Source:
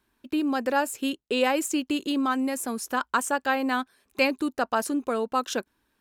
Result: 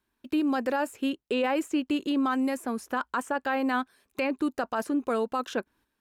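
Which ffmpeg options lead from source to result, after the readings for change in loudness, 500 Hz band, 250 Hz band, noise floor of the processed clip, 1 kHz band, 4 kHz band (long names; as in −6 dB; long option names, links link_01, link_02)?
−2.5 dB, −2.0 dB, −0.5 dB, −80 dBFS, −3.0 dB, −6.0 dB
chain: -filter_complex "[0:a]agate=range=-7dB:threshold=-58dB:ratio=16:detection=peak,acrossover=split=2800[link_01][link_02];[link_02]acompressor=threshold=-46dB:ratio=6[link_03];[link_01][link_03]amix=inputs=2:normalize=0,alimiter=limit=-18.5dB:level=0:latency=1:release=12"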